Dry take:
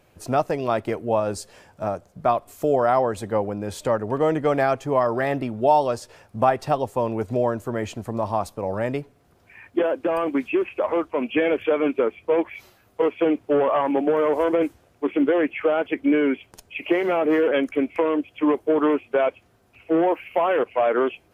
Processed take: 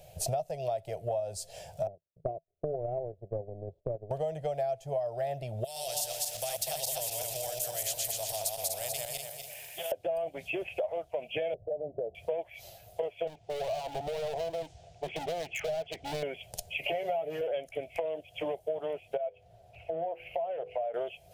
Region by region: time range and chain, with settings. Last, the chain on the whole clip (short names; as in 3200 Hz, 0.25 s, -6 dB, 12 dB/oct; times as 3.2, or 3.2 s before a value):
1.87–4.11 power-law curve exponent 2 + synth low-pass 370 Hz, resonance Q 3.9
5.64–9.92 regenerating reverse delay 0.122 s, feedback 49%, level -2 dB + pre-emphasis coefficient 0.97 + spectral compressor 2:1
11.54–12.15 steep low-pass 720 Hz + low shelf 390 Hz +7 dB + compressor 5:1, threshold -24 dBFS
13.27–16.23 LPF 6900 Hz 24 dB/oct + bell 560 Hz -8.5 dB 0.25 oct + hard clip -27.5 dBFS
16.83–17.41 comb 7.1 ms, depth 80% + three-band squash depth 40%
19.17–20.94 LPF 1800 Hz 6 dB/oct + compressor 2:1, threshold -34 dBFS + notches 50/100/150/200/250/300/350/400/450/500 Hz
whole clip: EQ curve 160 Hz 0 dB, 260 Hz -26 dB, 670 Hz +8 dB, 1100 Hz -21 dB, 3200 Hz -2 dB; compressor 6:1, threshold -38 dBFS; high shelf 6000 Hz +6.5 dB; gain +6 dB